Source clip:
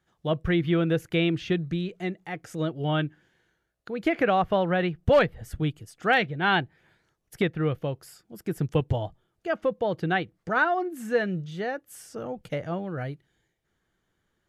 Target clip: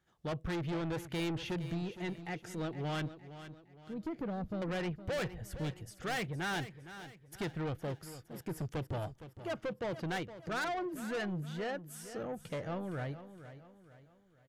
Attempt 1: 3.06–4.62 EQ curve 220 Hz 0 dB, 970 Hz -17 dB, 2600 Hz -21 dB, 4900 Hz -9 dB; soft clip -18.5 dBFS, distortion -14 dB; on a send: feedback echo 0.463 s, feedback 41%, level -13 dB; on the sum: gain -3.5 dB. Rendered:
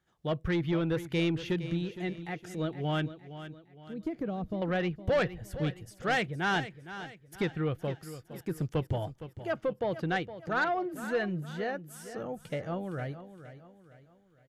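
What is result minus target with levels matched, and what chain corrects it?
soft clip: distortion -9 dB
3.06–4.62 EQ curve 220 Hz 0 dB, 970 Hz -17 dB, 2600 Hz -21 dB, 4900 Hz -9 dB; soft clip -30 dBFS, distortion -5 dB; on a send: feedback echo 0.463 s, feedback 41%, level -13 dB; on the sum: gain -3.5 dB

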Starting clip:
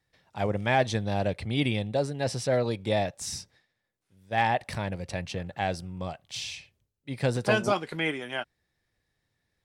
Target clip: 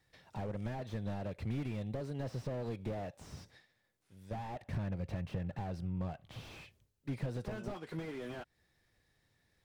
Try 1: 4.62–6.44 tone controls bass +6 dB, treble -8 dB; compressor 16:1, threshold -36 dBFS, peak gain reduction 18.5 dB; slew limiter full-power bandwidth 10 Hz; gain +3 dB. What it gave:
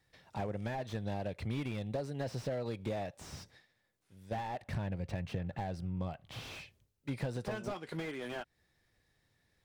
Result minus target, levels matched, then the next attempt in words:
slew limiter: distortion -5 dB
4.62–6.44 tone controls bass +6 dB, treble -8 dB; compressor 16:1, threshold -36 dBFS, peak gain reduction 18.5 dB; slew limiter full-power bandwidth 4.5 Hz; gain +3 dB

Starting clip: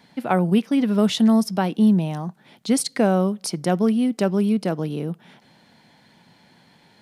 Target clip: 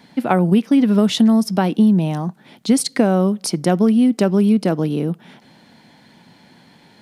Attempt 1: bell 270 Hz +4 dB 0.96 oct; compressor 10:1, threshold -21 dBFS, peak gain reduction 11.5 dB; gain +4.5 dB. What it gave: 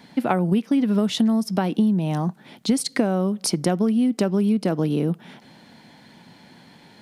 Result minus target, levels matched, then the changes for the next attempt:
compressor: peak gain reduction +6.5 dB
change: compressor 10:1, threshold -14 dBFS, peak gain reduction 5 dB

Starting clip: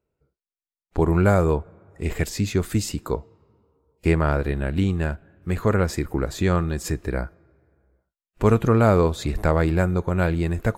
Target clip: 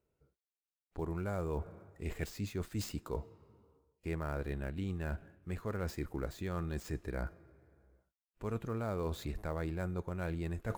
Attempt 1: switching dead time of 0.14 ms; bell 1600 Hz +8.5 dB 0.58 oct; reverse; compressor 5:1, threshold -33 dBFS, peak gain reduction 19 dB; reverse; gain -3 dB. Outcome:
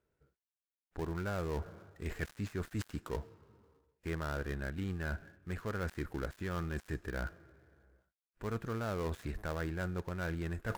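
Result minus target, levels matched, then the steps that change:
2000 Hz band +5.0 dB; switching dead time: distortion +7 dB
change: switching dead time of 0.053 ms; remove: bell 1600 Hz +8.5 dB 0.58 oct

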